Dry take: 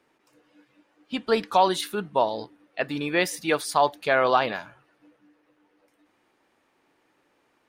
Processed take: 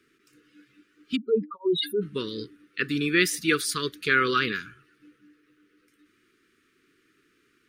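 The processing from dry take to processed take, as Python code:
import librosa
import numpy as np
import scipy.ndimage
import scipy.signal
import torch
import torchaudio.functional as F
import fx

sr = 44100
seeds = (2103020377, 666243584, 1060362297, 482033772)

y = fx.spec_expand(x, sr, power=3.9, at=(1.15, 2.01), fade=0.02)
y = scipy.signal.sosfilt(scipy.signal.ellip(3, 1.0, 50, [420.0, 1300.0], 'bandstop', fs=sr, output='sos'), y)
y = y * 10.0 ** (4.0 / 20.0)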